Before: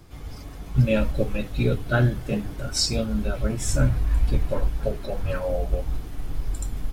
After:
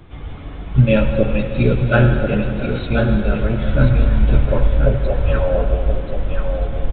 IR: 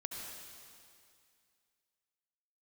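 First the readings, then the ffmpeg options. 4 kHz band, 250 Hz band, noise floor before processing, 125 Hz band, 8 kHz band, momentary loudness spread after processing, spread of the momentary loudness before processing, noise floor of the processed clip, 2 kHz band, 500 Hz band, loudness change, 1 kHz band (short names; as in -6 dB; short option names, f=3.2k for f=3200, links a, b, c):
-3.5 dB, +8.0 dB, -38 dBFS, +8.0 dB, under -40 dB, 9 LU, 12 LU, -31 dBFS, +8.5 dB, +8.5 dB, +7.5 dB, +8.5 dB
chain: -filter_complex "[0:a]asplit=2[a][b];[1:a]atrim=start_sample=2205,asetrate=37044,aresample=44100[c];[b][c]afir=irnorm=-1:irlink=0,volume=-1dB[d];[a][d]amix=inputs=2:normalize=0,aresample=8000,aresample=44100,aecho=1:1:1033:0.473,volume=2.5dB"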